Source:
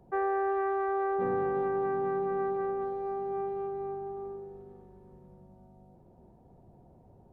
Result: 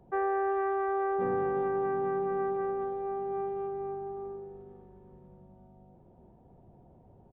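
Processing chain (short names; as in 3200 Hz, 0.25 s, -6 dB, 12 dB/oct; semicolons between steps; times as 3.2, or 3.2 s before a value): downsampling 8000 Hz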